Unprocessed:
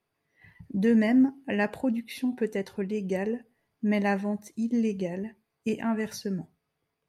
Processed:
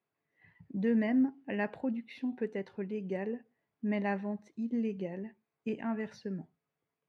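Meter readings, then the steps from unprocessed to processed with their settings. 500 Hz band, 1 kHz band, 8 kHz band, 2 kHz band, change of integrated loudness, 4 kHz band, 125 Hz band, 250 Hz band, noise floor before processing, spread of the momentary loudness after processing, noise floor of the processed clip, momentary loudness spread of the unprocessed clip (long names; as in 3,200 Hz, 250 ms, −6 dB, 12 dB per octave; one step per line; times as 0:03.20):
−6.5 dB, −6.5 dB, below −20 dB, −7.0 dB, −6.5 dB, below −10 dB, −7.0 dB, −6.5 dB, −81 dBFS, 12 LU, below −85 dBFS, 12 LU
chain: band-pass filter 110–3,000 Hz
level −6.5 dB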